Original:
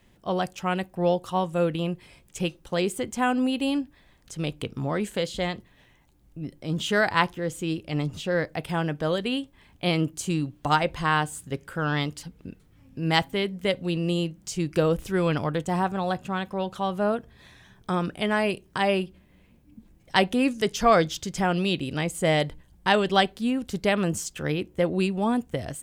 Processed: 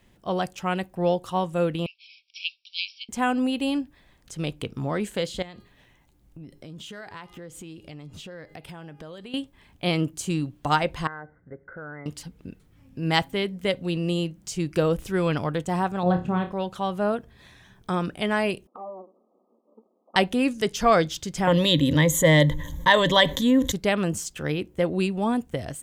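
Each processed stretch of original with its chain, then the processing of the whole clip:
0:01.86–0:03.09: linear-phase brick-wall band-pass 2,200–5,700 Hz + spectral tilt +3 dB per octave
0:05.42–0:09.34: hum removal 409.3 Hz, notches 36 + downward compressor, threshold −38 dBFS
0:11.07–0:12.06: Chebyshev low-pass with heavy ripple 2,100 Hz, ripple 9 dB + downward compressor 3 to 1, threshold −37 dBFS
0:16.03–0:16.52: high-pass filter 230 Hz 6 dB per octave + spectral tilt −4.5 dB per octave + flutter between parallel walls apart 4.8 metres, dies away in 0.26 s
0:18.67–0:20.16: lower of the sound and its delayed copy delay 1.5 ms + linear-phase brick-wall band-pass 210–1,300 Hz + downward compressor 2.5 to 1, threshold −41 dBFS
0:21.47–0:23.72: EQ curve with evenly spaced ripples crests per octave 1.1, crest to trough 16 dB + envelope flattener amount 50%
whole clip: no processing

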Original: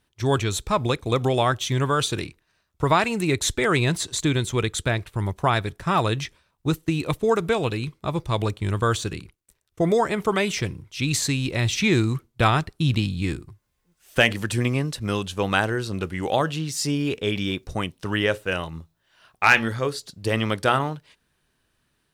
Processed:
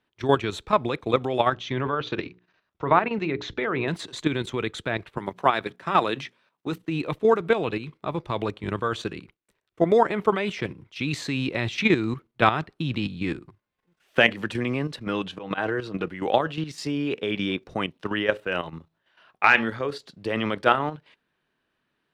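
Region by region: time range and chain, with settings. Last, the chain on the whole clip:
0:01.53–0:03.88: Butterworth low-pass 6,900 Hz 48 dB per octave + treble cut that deepens with the level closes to 1,900 Hz, closed at −16 dBFS + mains-hum notches 60/120/180/240/300/360/420/480 Hz
0:05.17–0:06.83: high-pass filter 170 Hz + high-shelf EQ 3,700 Hz +5 dB + mains-hum notches 60/120/180/240 Hz
0:15.04–0:16.09: high-shelf EQ 6,900 Hz −8 dB + volume swells 140 ms + comb filter 6.4 ms, depth 42%
whole clip: three-way crossover with the lows and the highs turned down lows −15 dB, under 160 Hz, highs −18 dB, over 3,800 Hz; output level in coarse steps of 10 dB; level +4 dB

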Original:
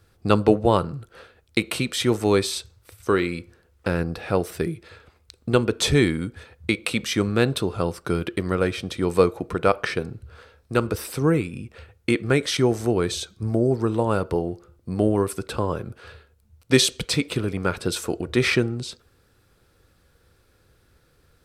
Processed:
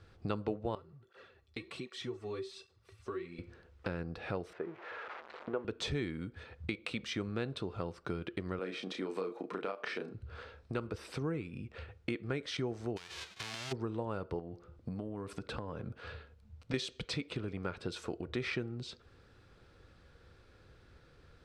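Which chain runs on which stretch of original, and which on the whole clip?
0:00.75–0:03.39: mu-law and A-law mismatch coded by mu + tuned comb filter 380 Hz, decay 0.18 s, harmonics odd, mix 80% + through-zero flanger with one copy inverted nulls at 1.3 Hz, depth 6.5 ms
0:04.53–0:05.65: spike at every zero crossing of −16 dBFS + flat-topped band-pass 880 Hz, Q 0.68 + spectral tilt −3 dB per octave
0:08.59–0:10.14: high-pass filter 210 Hz 24 dB per octave + downward compressor 2.5 to 1, threshold −22 dBFS + double-tracking delay 32 ms −4.5 dB
0:12.96–0:13.71: spectral envelope flattened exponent 0.1 + parametric band 3,100 Hz +6 dB 2.8 octaves + downward compressor 16 to 1, threshold −29 dBFS
0:14.39–0:16.74: parametric band 230 Hz +3 dB 1.8 octaves + notch filter 370 Hz, Q 5.4 + downward compressor 4 to 1, threshold −27 dBFS
whole clip: low-pass filter 4,500 Hz 12 dB per octave; downward compressor 2.5 to 1, threshold −42 dBFS

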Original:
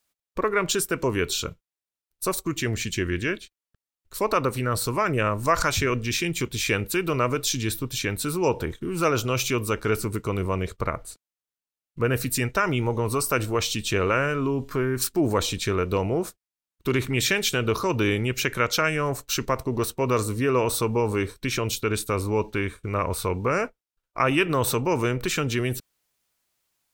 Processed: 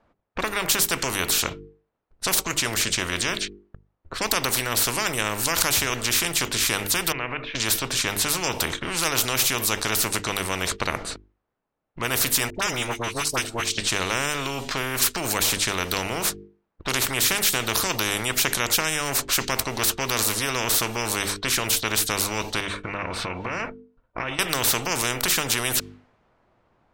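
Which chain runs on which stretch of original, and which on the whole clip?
0:07.12–0:07.55: downward compressor 2 to 1, threshold −25 dBFS + transistor ladder low-pass 2,600 Hz, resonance 65%
0:12.50–0:13.78: noise gate −25 dBFS, range −22 dB + all-pass dispersion highs, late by 49 ms, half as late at 1,100 Hz
0:22.60–0:24.39: notch comb filter 410 Hz + downward compressor 8 to 1, threshold −30 dBFS
whole clip: low-pass that shuts in the quiet parts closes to 890 Hz, open at −22 dBFS; mains-hum notches 50/100/150/200/250/300/350/400/450 Hz; every bin compressed towards the loudest bin 4 to 1; level +6.5 dB

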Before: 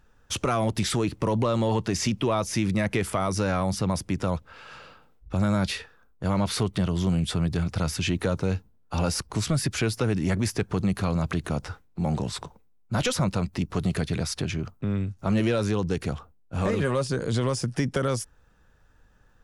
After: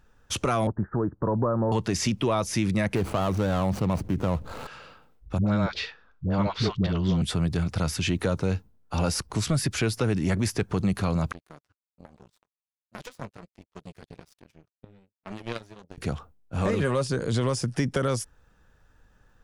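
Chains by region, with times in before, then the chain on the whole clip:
0:00.67–0:01.72: Butterworth low-pass 1,700 Hz 96 dB per octave + expander for the loud parts, over −45 dBFS
0:02.95–0:04.67: running median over 25 samples + envelope flattener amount 50%
0:05.38–0:07.22: low-pass filter 5,100 Hz 24 dB per octave + all-pass dispersion highs, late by 87 ms, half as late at 490 Hz
0:11.32–0:15.98: flanger 1.3 Hz, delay 2.9 ms, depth 6.1 ms, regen −9% + power curve on the samples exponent 3
whole clip: no processing

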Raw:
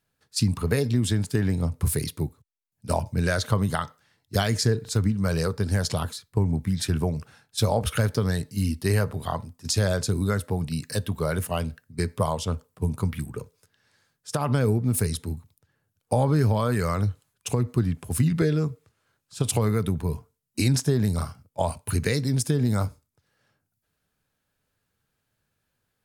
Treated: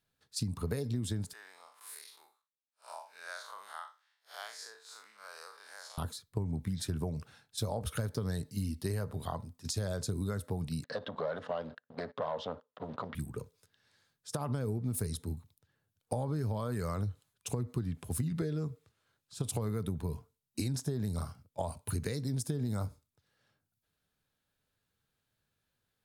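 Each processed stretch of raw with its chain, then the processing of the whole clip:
0:01.33–0:05.98: spectrum smeared in time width 112 ms + high-pass filter 910 Hz 24 dB per octave + spectral tilt −2 dB per octave
0:10.84–0:13.15: leveller curve on the samples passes 3 + downward compressor, threshold −20 dBFS + loudspeaker in its box 350–3,400 Hz, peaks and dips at 350 Hz −9 dB, 560 Hz +5 dB, 2,400 Hz −9 dB
whole clip: parametric band 3,700 Hz +5 dB 0.52 octaves; downward compressor, threshold −24 dBFS; dynamic equaliser 2,800 Hz, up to −8 dB, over −49 dBFS, Q 0.8; level −6 dB

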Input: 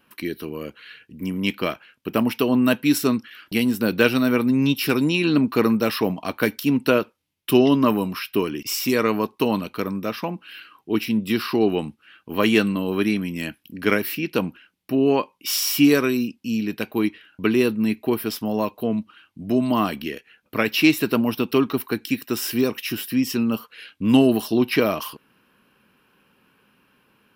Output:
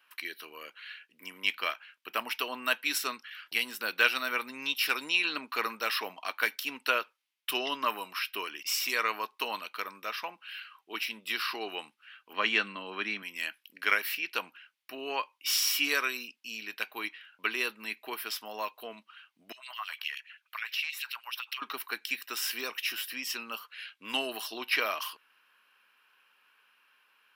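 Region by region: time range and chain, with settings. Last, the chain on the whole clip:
0:12.33–0:13.23: high-pass with resonance 190 Hz, resonance Q 2.3 + high-frequency loss of the air 110 metres
0:19.52–0:21.62: low-shelf EQ 440 Hz −9 dB + downward compressor, threshold −30 dBFS + auto-filter high-pass sine 9.5 Hz 850–3,100 Hz
whole clip: high-pass filter 1,300 Hz 12 dB per octave; high-shelf EQ 5,200 Hz −7.5 dB

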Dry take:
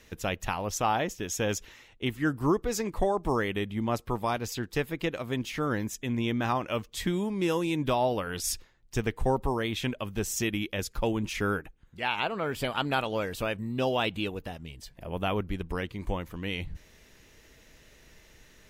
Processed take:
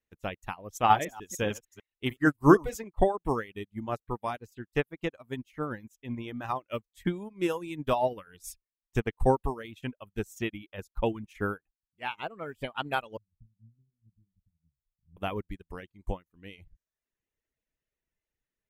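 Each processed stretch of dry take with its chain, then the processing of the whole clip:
0:00.75–0:02.84: delay that plays each chunk backwards 150 ms, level −5 dB + high-shelf EQ 2,700 Hz +4.5 dB
0:13.17–0:15.17: inverse Chebyshev low-pass filter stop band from 560 Hz, stop band 60 dB + double-tracking delay 36 ms −11 dB
whole clip: reverb reduction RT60 0.91 s; parametric band 4,700 Hz −8 dB 0.82 octaves; expander for the loud parts 2.5 to 1, over −48 dBFS; level +9 dB

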